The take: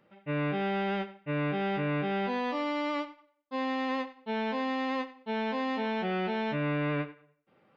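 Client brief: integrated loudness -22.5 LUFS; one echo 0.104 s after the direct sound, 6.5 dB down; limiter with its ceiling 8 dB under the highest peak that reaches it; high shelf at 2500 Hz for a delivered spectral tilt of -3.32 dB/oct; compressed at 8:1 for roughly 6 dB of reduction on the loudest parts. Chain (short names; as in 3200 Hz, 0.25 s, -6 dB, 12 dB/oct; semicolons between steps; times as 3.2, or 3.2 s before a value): high shelf 2500 Hz +8.5 dB; compressor 8:1, threshold -34 dBFS; limiter -36 dBFS; echo 0.104 s -6.5 dB; gain +19 dB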